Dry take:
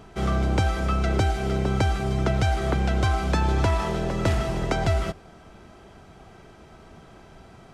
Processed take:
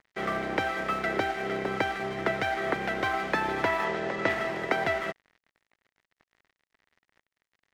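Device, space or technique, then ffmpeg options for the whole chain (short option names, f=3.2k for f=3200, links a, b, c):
pocket radio on a weak battery: -filter_complex "[0:a]highpass=310,lowpass=3.3k,aeval=exprs='sgn(val(0))*max(abs(val(0))-0.00631,0)':c=same,equalizer=f=1.9k:t=o:w=0.4:g=10,asettb=1/sr,asplit=3[a][b][c];[a]atrim=end=3.854[d];[b]atrim=start=3.85:end=4.29,asetpts=PTS-STARTPTS,afade=t=in:d=0.004:c=qsin,afade=t=out:st=0.436:d=0.004:c=qsin,lowpass=f=8.4k:w=0.5412,lowpass=f=8.4k:w=1.3066[e];[c]atrim=start=4.286[f];[d][e]acrossfade=d=0.004:c1=hsin:c2=qsin[g];[g][f]acrossfade=d=0.004:c1=qsin:c2=hsin"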